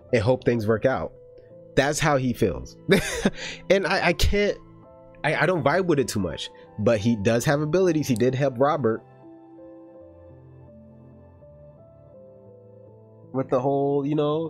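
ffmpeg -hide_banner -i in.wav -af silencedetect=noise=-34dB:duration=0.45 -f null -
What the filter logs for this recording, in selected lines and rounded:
silence_start: 1.07
silence_end: 1.77 | silence_duration: 0.70
silence_start: 4.56
silence_end: 5.24 | silence_duration: 0.68
silence_start: 8.99
silence_end: 13.34 | silence_duration: 4.35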